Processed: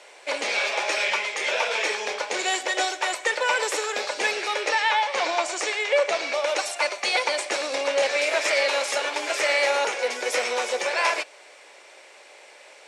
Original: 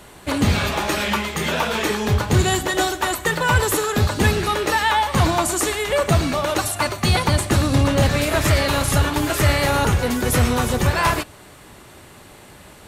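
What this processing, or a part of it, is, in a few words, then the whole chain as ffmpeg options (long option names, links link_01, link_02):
phone speaker on a table: -filter_complex "[0:a]highpass=frequency=470:width=0.5412,highpass=frequency=470:width=1.3066,equalizer=frequency=530:width_type=q:width=4:gain=6,equalizer=frequency=1200:width_type=q:width=4:gain=-5,equalizer=frequency=2300:width_type=q:width=4:gain=9,equalizer=frequency=5400:width_type=q:width=4:gain=6,lowpass=frequency=8300:width=0.5412,lowpass=frequency=8300:width=1.3066,asettb=1/sr,asplit=3[link_01][link_02][link_03];[link_01]atrim=end=4.694[link_04];[link_02]atrim=start=4.69:end=6.34,asetpts=PTS-STARTPTS,afade=type=in:duration=0.004:curve=qsin,afade=type=out:start_time=1.646:duration=0.004:curve=qsin,lowpass=6700[link_05];[link_03]atrim=start=6.336[link_06];[link_04][link_05]acrossfade=duration=0.004:curve1=hsin:curve2=qsin[link_07];[link_07][link_06]acrossfade=duration=0.004:curve1=qsin:curve2=hsin,volume=-4dB"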